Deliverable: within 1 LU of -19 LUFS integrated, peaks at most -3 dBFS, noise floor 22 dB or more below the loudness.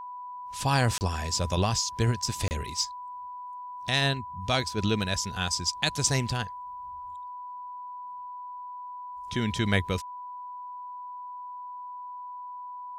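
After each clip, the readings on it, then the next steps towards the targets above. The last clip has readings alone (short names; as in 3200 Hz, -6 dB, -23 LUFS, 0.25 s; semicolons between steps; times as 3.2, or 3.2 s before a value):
dropouts 2; longest dropout 29 ms; steady tone 990 Hz; tone level -37 dBFS; loudness -30.5 LUFS; peak -10.0 dBFS; loudness target -19.0 LUFS
-> interpolate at 0.98/2.48, 29 ms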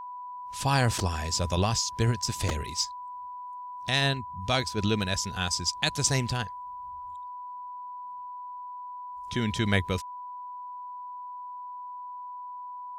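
dropouts 0; steady tone 990 Hz; tone level -37 dBFS
-> notch 990 Hz, Q 30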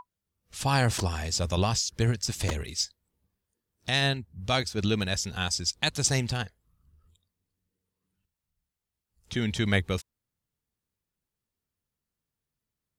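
steady tone none; loudness -28.0 LUFS; peak -10.0 dBFS; loudness target -19.0 LUFS
-> gain +9 dB; limiter -3 dBFS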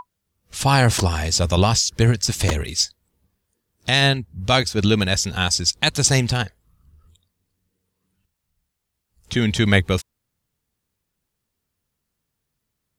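loudness -19.0 LUFS; peak -3.0 dBFS; noise floor -79 dBFS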